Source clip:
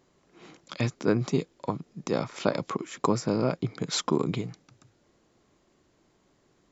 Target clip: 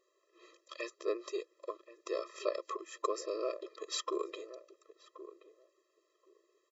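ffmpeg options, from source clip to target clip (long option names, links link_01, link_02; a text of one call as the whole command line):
ffmpeg -i in.wav -filter_complex "[0:a]equalizer=frequency=250:width_type=o:width=1.3:gain=-6,asplit=2[link_01][link_02];[link_02]adelay=1077,lowpass=frequency=990:poles=1,volume=-13dB,asplit=2[link_03][link_04];[link_04]adelay=1077,lowpass=frequency=990:poles=1,volume=0.16[link_05];[link_03][link_05]amix=inputs=2:normalize=0[link_06];[link_01][link_06]amix=inputs=2:normalize=0,afftfilt=real='re*eq(mod(floor(b*sr/1024/340),2),1)':imag='im*eq(mod(floor(b*sr/1024/340),2),1)':win_size=1024:overlap=0.75,volume=-5dB" out.wav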